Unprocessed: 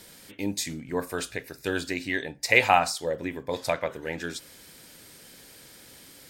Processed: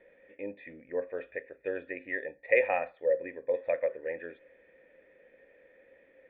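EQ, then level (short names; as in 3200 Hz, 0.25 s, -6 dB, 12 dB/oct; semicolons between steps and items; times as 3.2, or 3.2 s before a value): vocal tract filter e; air absorption 180 m; bell 120 Hz -12 dB 1.3 oct; +7.0 dB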